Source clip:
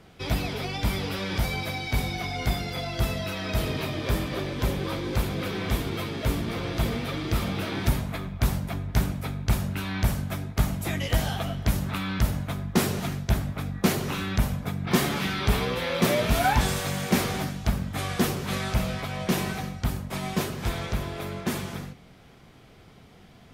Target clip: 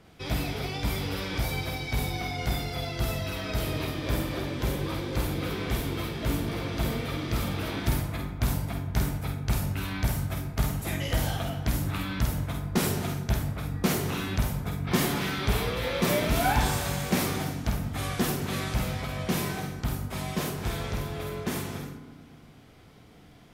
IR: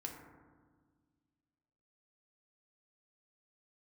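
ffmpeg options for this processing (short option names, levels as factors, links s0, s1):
-filter_complex "[0:a]asplit=2[s0][s1];[1:a]atrim=start_sample=2205,highshelf=f=6800:g=10.5,adelay=49[s2];[s1][s2]afir=irnorm=-1:irlink=0,volume=0.75[s3];[s0][s3]amix=inputs=2:normalize=0,volume=0.668"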